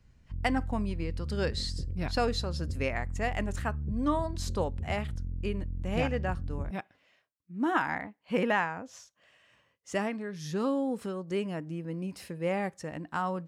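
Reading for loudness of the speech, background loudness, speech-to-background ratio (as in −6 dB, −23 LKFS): −33.5 LKFS, −38.0 LKFS, 4.5 dB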